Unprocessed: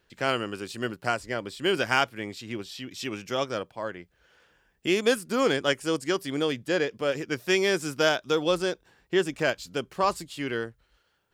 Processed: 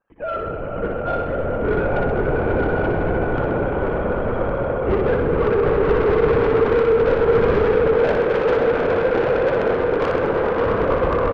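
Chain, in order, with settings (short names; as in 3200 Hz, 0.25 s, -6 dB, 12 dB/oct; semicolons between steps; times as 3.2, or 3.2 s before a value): sine-wave speech; LPF 1100 Hz 12 dB/oct; swelling echo 0.11 s, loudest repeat 8, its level -5 dB; LPC vocoder at 8 kHz whisper; soft clip -21.5 dBFS, distortion -9 dB; 7.92–10.65 low shelf 200 Hz -10 dB; reverse bouncing-ball echo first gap 60 ms, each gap 1.15×, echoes 5; gain +6 dB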